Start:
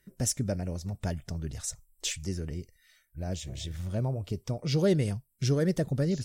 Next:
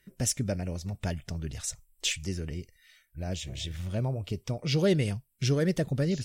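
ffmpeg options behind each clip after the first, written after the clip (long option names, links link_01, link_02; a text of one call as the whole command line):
ffmpeg -i in.wav -af "equalizer=frequency=2700:width_type=o:width=1.1:gain=7" out.wav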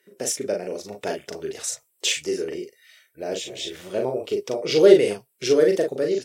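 ffmpeg -i in.wav -filter_complex "[0:a]dynaudnorm=framelen=120:gausssize=13:maxgain=3.5dB,highpass=frequency=410:width_type=q:width=3.4,asplit=2[link_01][link_02];[link_02]aecho=0:1:39|54:0.631|0.188[link_03];[link_01][link_03]amix=inputs=2:normalize=0,volume=1.5dB" out.wav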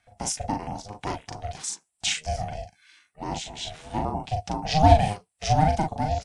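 ffmpeg -i in.wav -af "aeval=exprs='val(0)*sin(2*PI*310*n/s)':channel_layout=same,aresample=22050,aresample=44100" out.wav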